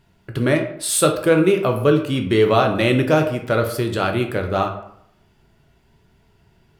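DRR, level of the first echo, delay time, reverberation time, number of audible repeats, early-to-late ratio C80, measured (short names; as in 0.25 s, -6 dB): 3.5 dB, none, none, 0.70 s, none, 11.5 dB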